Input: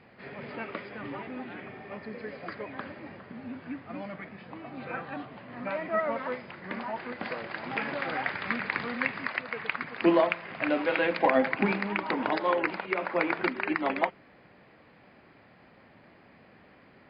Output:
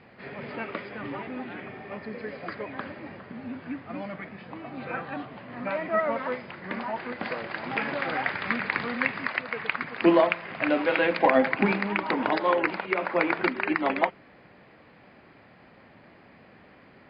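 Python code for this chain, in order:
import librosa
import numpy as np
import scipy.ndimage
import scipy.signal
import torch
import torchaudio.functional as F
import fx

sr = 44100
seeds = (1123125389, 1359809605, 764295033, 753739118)

y = scipy.signal.sosfilt(scipy.signal.butter(2, 7000.0, 'lowpass', fs=sr, output='sos'), x)
y = y * 10.0 ** (3.0 / 20.0)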